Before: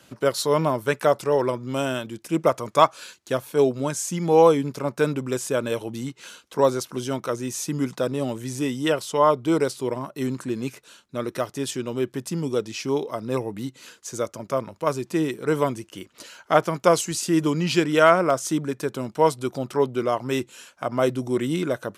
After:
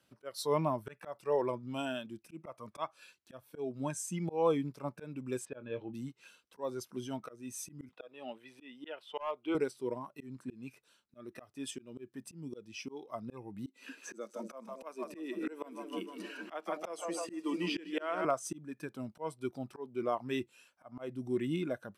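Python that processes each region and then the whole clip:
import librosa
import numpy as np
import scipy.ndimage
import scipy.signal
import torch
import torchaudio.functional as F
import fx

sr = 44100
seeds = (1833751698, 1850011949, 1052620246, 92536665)

y = fx.chain(x, sr, fx.lowpass(hz=4100.0, slope=24),
    fx.high_shelf(hz=3000.0, db=-6.0),
    fx.doubler(ms=24.0, db=-12.5), at=(5.45, 5.93))
y = fx.chain(y, sr, fx.highpass(hz=360.0, slope=12),
    fx.high_shelf_res(hz=4600.0, db=-12.0, q=1.5),
    fx.clip_hard(threshold_db=-12.0), at=(7.89, 9.55))
y = fx.chain(y, sr, fx.ellip_highpass(hz=200.0, order=4, stop_db=40),
    fx.echo_split(split_hz=430.0, low_ms=226, high_ms=155, feedback_pct=52, wet_db=-9.5),
    fx.band_squash(depth_pct=70), at=(13.66, 18.25))
y = fx.notch(y, sr, hz=6800.0, q=6.7)
y = fx.noise_reduce_blind(y, sr, reduce_db=10)
y = fx.auto_swell(y, sr, attack_ms=268.0)
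y = y * 10.0 ** (-9.0 / 20.0)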